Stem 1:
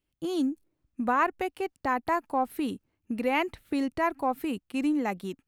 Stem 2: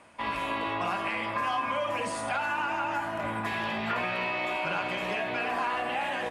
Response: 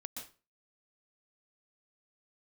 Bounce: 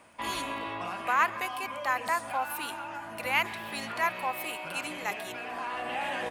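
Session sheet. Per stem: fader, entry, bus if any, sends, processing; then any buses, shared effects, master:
+1.5 dB, 0.00 s, send -12 dB, HPF 1100 Hz 12 dB/oct; high shelf 4500 Hz +7 dB
-1.5 dB, 0.00 s, no send, high shelf 9300 Hz +8 dB; auto duck -7 dB, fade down 1.40 s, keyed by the first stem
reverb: on, RT60 0.35 s, pre-delay 0.115 s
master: dry

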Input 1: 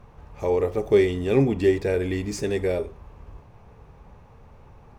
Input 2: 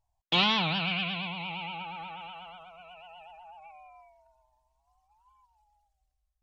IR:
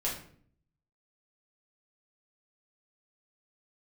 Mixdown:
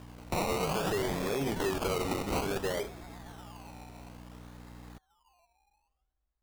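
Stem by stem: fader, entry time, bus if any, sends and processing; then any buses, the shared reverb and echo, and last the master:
-1.5 dB, 0.00 s, no send, high shelf 4600 Hz +12 dB; hum 60 Hz, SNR 11 dB; tilt +3.5 dB/oct
-3.5 dB, 0.00 s, no send, bell 2600 Hz +6.5 dB 0.21 oct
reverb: off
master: decimation with a swept rate 21×, swing 60% 0.58 Hz; limiter -24 dBFS, peak gain reduction 13 dB

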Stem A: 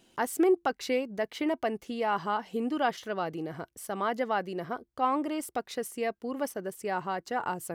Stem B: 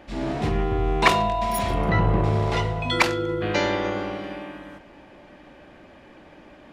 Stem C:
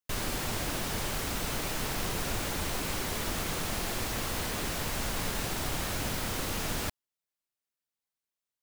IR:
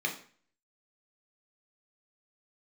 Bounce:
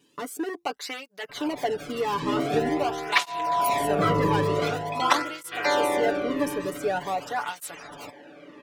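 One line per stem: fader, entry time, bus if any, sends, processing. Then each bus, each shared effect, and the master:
+0.5 dB, 0.00 s, no send, de-esser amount 60%; hard clip -27 dBFS, distortion -9 dB
-3.0 dB, 2.10 s, no send, low shelf 120 Hz -8 dB
-8.0 dB, 1.20 s, no send, spectral gate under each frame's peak -20 dB strong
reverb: off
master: comb 6.9 ms, depth 75%; AGC gain up to 4.5 dB; tape flanging out of phase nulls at 0.46 Hz, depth 1.5 ms

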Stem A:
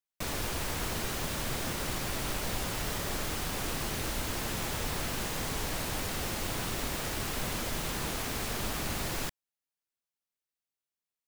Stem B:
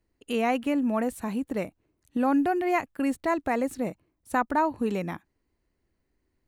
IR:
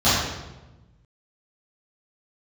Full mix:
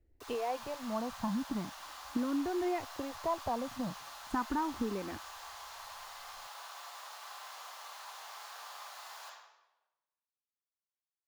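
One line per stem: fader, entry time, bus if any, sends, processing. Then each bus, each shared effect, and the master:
-19.5 dB, 0.00 s, send -14.5 dB, Bessel high-pass 990 Hz, order 6
-3.0 dB, 0.00 s, no send, tilt -3 dB/oct; compressor, threshold -28 dBFS, peak gain reduction 12.5 dB; endless phaser +0.39 Hz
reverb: on, RT60 1.1 s, pre-delay 3 ms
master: bell 1000 Hz +8.5 dB 0.84 oct

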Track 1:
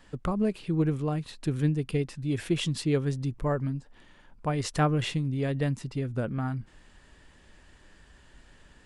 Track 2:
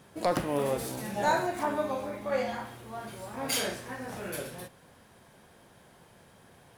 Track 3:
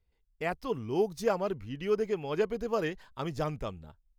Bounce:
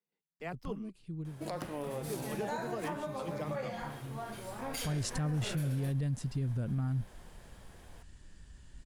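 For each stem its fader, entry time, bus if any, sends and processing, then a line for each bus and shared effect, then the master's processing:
-9.0 dB, 0.40 s, no send, tone controls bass +13 dB, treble +10 dB; auto duck -20 dB, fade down 1.00 s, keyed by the third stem
-1.5 dB, 1.25 s, no send, compressor 6:1, threshold -34 dBFS, peak gain reduction 12 dB
-9.5 dB, 0.00 s, muted 0.9–2.09, no send, steep high-pass 150 Hz 96 dB/oct; tone controls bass +6 dB, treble -1 dB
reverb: off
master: limiter -26.5 dBFS, peak gain reduction 10 dB

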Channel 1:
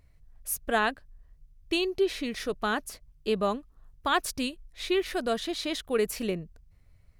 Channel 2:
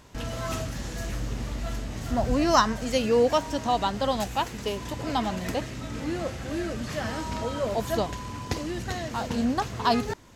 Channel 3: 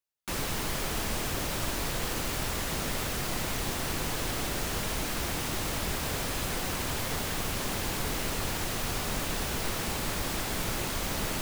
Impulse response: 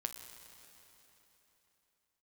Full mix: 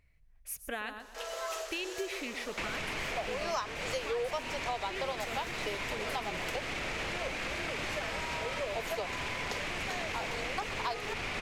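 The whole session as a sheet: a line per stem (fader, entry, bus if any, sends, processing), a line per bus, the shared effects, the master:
-10.5 dB, 0.00 s, bus A, send -11.5 dB, echo send -9.5 dB, dry
-2.0 dB, 1.00 s, no bus, no send, no echo send, steep high-pass 390 Hz 72 dB/oct
-2.0 dB, 2.30 s, bus A, no send, no echo send, LPF 5900 Hz 12 dB/oct; bell 610 Hz +4.5 dB 2.3 oct
bus A: 0.0 dB, bell 2300 Hz +13.5 dB 0.87 oct; limiter -24.5 dBFS, peak gain reduction 9.5 dB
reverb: on, RT60 3.7 s, pre-delay 8 ms
echo: feedback echo 0.124 s, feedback 28%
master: compressor 4:1, threshold -33 dBFS, peak gain reduction 14 dB

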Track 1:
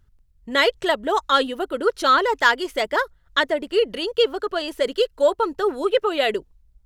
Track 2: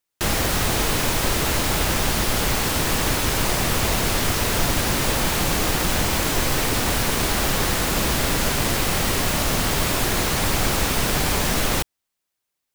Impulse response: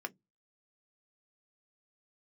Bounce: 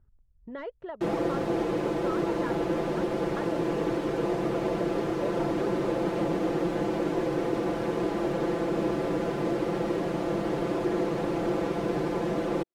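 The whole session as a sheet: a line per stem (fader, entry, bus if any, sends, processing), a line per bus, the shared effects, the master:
-4.5 dB, 0.00 s, no send, one-sided fold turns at -10.5 dBFS; LPF 1100 Hz 12 dB/oct; compressor 2.5:1, threshold -37 dBFS, peak gain reduction 15.5 dB
0.0 dB, 0.80 s, no send, band-pass 380 Hz, Q 1.7; comb 5.9 ms, depth 97%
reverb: off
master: dry

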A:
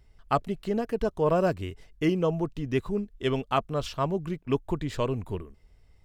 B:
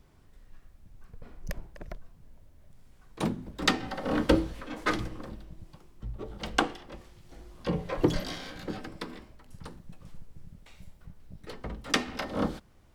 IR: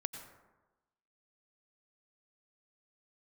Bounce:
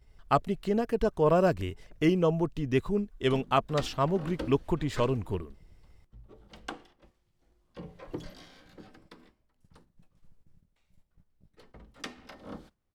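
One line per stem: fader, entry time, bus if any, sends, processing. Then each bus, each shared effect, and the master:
+0.5 dB, 0.00 s, no send, dry
-14.0 dB, 0.10 s, no send, dry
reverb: off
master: gate -58 dBFS, range -7 dB

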